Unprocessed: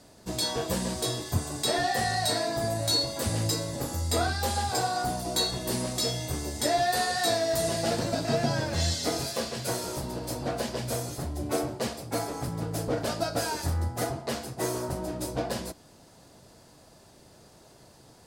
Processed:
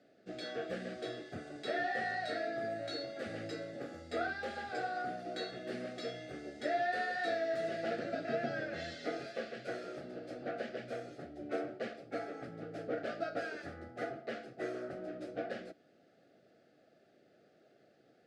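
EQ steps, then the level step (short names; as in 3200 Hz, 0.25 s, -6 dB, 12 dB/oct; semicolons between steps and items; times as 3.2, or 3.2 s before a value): dynamic EQ 1600 Hz, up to +5 dB, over -43 dBFS, Q 0.84; BPF 260–2200 Hz; Butterworth band-stop 980 Hz, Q 1.7; -7.5 dB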